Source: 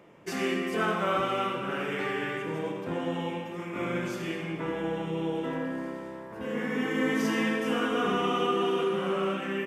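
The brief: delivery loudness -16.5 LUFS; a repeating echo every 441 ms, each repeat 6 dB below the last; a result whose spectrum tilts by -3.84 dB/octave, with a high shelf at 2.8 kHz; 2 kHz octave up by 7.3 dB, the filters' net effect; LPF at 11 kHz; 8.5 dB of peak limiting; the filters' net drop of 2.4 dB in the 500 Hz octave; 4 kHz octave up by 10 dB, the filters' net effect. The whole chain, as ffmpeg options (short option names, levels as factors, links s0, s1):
-af "lowpass=11000,equalizer=f=500:t=o:g=-3.5,equalizer=f=2000:t=o:g=5.5,highshelf=f=2800:g=4,equalizer=f=4000:t=o:g=9,alimiter=limit=0.0891:level=0:latency=1,aecho=1:1:441|882|1323|1764|2205|2646:0.501|0.251|0.125|0.0626|0.0313|0.0157,volume=4.22"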